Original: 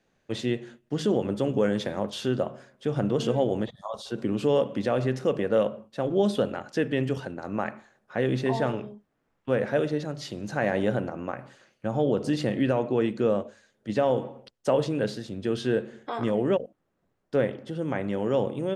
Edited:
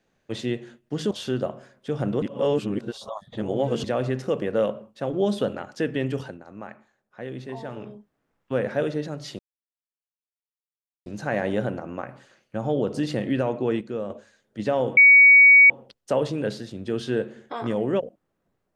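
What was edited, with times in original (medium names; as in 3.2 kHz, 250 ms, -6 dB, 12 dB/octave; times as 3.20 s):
1.11–2.08 s: delete
3.19–4.81 s: reverse
7.21–8.89 s: dip -9.5 dB, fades 0.19 s
10.36 s: insert silence 1.67 s
13.11–13.40 s: gain -6.5 dB
14.27 s: add tone 2.25 kHz -8.5 dBFS 0.73 s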